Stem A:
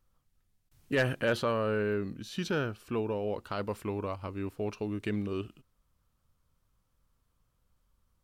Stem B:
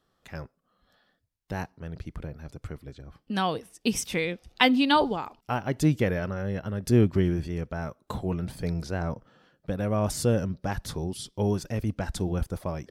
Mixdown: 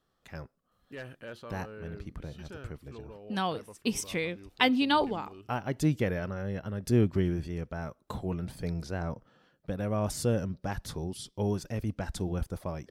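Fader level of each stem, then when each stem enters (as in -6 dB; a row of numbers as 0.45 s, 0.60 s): -15.0 dB, -4.0 dB; 0.00 s, 0.00 s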